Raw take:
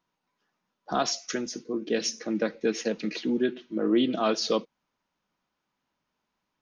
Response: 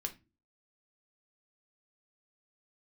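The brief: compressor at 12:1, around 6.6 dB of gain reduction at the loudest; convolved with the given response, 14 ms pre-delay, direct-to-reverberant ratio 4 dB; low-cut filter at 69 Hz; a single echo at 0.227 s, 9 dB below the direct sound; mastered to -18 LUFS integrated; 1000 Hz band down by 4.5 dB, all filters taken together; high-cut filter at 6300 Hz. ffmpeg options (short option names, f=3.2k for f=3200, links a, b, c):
-filter_complex "[0:a]highpass=69,lowpass=6.3k,equalizer=f=1k:t=o:g=-7,acompressor=threshold=-26dB:ratio=12,aecho=1:1:227:0.355,asplit=2[a][b];[1:a]atrim=start_sample=2205,adelay=14[c];[b][c]afir=irnorm=-1:irlink=0,volume=-3.5dB[d];[a][d]amix=inputs=2:normalize=0,volume=13dB"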